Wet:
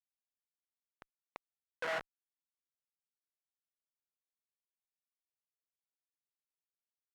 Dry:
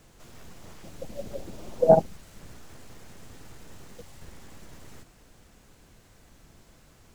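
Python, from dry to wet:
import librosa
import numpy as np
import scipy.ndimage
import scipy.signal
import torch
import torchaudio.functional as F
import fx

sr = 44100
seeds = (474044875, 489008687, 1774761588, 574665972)

y = fx.schmitt(x, sr, flips_db=-27.5)
y = fx.bandpass_q(y, sr, hz=1500.0, q=1.3)
y = F.gain(torch.from_numpy(y), 4.0).numpy()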